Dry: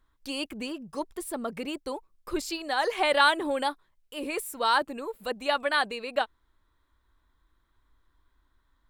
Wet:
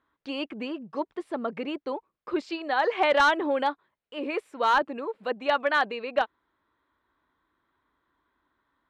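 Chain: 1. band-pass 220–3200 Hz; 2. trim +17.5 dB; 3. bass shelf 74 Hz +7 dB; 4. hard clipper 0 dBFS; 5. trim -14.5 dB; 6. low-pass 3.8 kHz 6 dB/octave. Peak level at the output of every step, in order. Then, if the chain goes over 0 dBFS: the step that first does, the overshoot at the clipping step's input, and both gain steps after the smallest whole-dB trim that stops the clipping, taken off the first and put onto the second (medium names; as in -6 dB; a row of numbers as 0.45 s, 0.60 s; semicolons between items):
-9.5 dBFS, +8.0 dBFS, +8.0 dBFS, 0.0 dBFS, -14.5 dBFS, -14.5 dBFS; step 2, 8.0 dB; step 2 +9.5 dB, step 5 -6.5 dB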